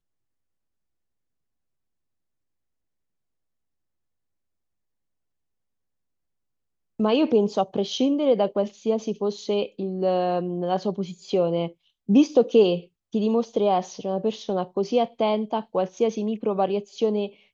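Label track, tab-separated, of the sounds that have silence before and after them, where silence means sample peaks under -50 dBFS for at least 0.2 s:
6.990000	11.730000	sound
12.080000	12.870000	sound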